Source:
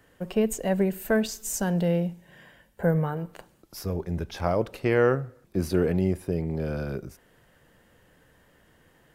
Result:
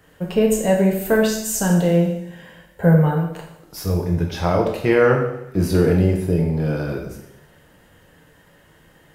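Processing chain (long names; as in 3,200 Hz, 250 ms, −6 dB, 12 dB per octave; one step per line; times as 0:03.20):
coupled-rooms reverb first 0.75 s, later 2 s, from −23 dB, DRR −0.5 dB
level +4.5 dB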